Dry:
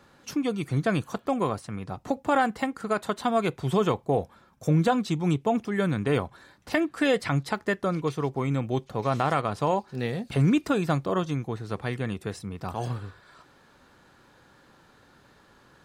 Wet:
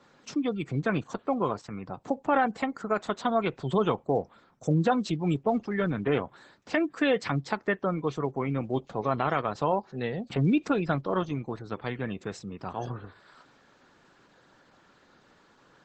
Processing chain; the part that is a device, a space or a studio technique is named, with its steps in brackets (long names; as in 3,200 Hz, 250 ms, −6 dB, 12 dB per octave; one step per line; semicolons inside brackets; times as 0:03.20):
noise-suppressed video call (high-pass filter 140 Hz 12 dB per octave; gate on every frequency bin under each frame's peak −30 dB strong; level −1 dB; Opus 12 kbit/s 48,000 Hz)